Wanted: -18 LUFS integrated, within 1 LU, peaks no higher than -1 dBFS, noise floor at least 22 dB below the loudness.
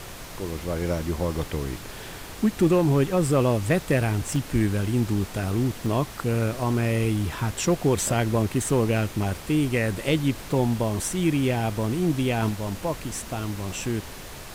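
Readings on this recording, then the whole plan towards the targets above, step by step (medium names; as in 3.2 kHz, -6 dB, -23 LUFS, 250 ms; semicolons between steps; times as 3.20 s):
dropouts 3; longest dropout 1.2 ms; noise floor -39 dBFS; noise floor target -47 dBFS; loudness -25.0 LUFS; peak level -10.5 dBFS; loudness target -18.0 LUFS
-> interpolate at 4.36/5.86/13.72 s, 1.2 ms; noise print and reduce 8 dB; trim +7 dB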